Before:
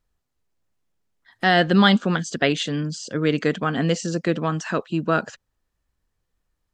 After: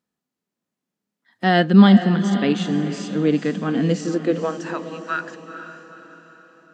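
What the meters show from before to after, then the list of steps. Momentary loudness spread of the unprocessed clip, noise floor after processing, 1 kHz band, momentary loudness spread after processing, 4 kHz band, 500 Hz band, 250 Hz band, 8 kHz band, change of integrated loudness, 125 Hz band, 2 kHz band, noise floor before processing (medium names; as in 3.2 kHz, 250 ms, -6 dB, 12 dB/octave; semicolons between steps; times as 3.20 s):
10 LU, -85 dBFS, -0.5 dB, 18 LU, -4.0 dB, +0.5 dB, +5.5 dB, -5.0 dB, +2.5 dB, +3.0 dB, -3.0 dB, -77 dBFS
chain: high-pass sweep 210 Hz -> 1.6 kHz, 3.97–5.15 s; harmonic-percussive split percussive -8 dB; echo that smears into a reverb 478 ms, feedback 46%, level -10 dB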